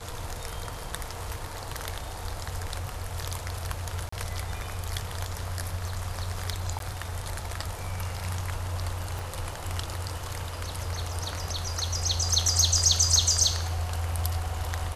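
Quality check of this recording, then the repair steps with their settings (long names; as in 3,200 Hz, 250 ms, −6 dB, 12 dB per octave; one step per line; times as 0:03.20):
0:04.09–0:04.12: drop-out 34 ms
0:06.79–0:06.80: drop-out 12 ms
0:09.19: click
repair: click removal
repair the gap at 0:04.09, 34 ms
repair the gap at 0:06.79, 12 ms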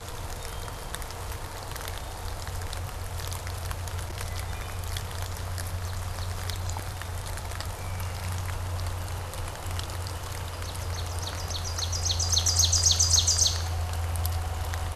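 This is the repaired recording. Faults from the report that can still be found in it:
0:09.19: click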